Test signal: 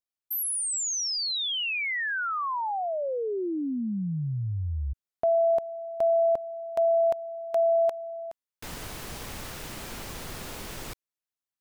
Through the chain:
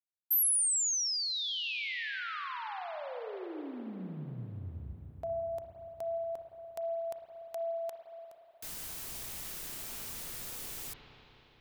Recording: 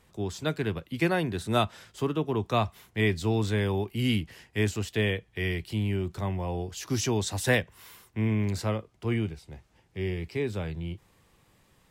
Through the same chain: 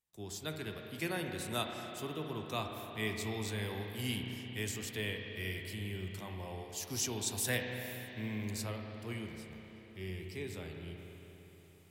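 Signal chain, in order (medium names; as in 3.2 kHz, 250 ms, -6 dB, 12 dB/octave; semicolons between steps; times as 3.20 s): pre-emphasis filter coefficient 0.8; spring tank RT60 3.9 s, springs 32/58 ms, chirp 25 ms, DRR 2.5 dB; gate with hold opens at -53 dBFS, hold 348 ms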